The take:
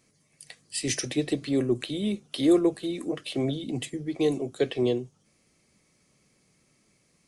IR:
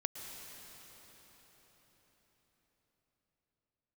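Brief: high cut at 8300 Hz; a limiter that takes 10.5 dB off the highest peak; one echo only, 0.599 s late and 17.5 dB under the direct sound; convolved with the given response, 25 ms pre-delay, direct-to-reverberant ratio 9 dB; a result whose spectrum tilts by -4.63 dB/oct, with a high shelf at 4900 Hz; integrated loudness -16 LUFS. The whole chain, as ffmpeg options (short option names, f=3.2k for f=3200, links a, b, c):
-filter_complex "[0:a]lowpass=8.3k,highshelf=f=4.9k:g=6.5,alimiter=limit=-21.5dB:level=0:latency=1,aecho=1:1:599:0.133,asplit=2[a][b];[1:a]atrim=start_sample=2205,adelay=25[c];[b][c]afir=irnorm=-1:irlink=0,volume=-9.5dB[d];[a][d]amix=inputs=2:normalize=0,volume=15dB"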